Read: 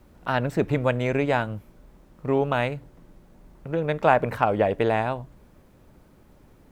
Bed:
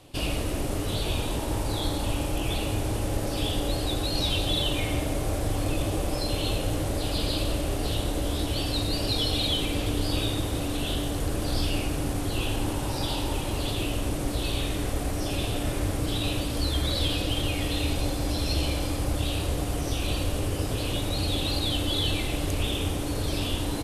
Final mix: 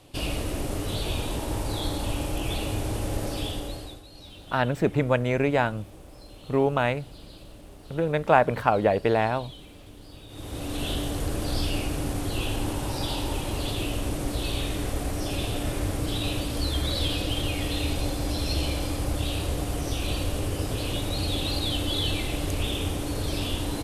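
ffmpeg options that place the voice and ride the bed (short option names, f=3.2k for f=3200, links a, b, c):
-filter_complex "[0:a]adelay=4250,volume=0dB[a];[1:a]volume=18.5dB,afade=t=out:st=3.26:d=0.76:silence=0.112202,afade=t=in:st=10.28:d=0.56:silence=0.105925[b];[a][b]amix=inputs=2:normalize=0"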